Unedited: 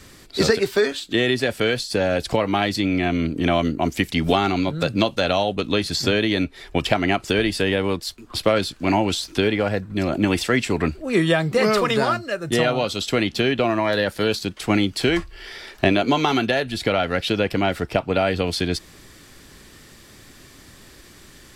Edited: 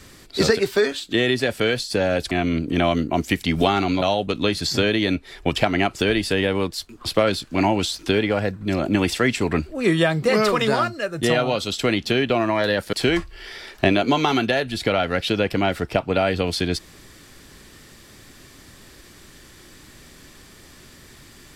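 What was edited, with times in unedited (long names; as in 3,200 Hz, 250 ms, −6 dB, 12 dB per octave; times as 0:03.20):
0:02.31–0:02.99: remove
0:04.70–0:05.31: remove
0:14.22–0:14.93: remove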